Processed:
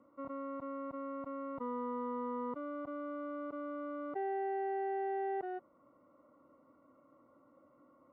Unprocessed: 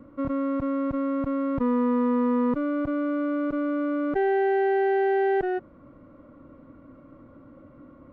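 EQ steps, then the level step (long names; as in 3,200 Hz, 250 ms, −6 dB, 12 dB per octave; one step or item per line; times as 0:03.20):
Savitzky-Golay smoothing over 65 samples
high-frequency loss of the air 69 metres
first difference
+10.0 dB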